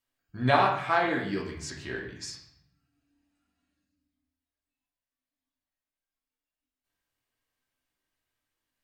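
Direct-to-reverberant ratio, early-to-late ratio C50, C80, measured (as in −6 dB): −2.5 dB, 5.0 dB, 8.5 dB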